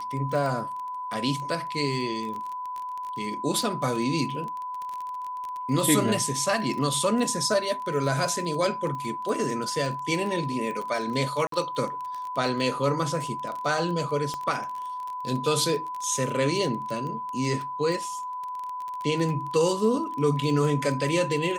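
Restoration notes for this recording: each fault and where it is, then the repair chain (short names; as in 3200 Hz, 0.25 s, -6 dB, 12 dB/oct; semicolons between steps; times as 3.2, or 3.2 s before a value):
crackle 23/s -30 dBFS
tone 1000 Hz -31 dBFS
11.47–11.52 gap 53 ms
14.34 pop -19 dBFS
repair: de-click; notch 1000 Hz, Q 30; interpolate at 11.47, 53 ms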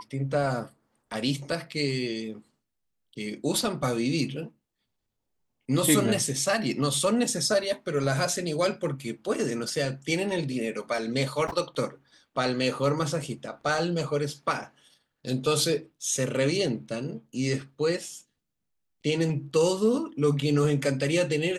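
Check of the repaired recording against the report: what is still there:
none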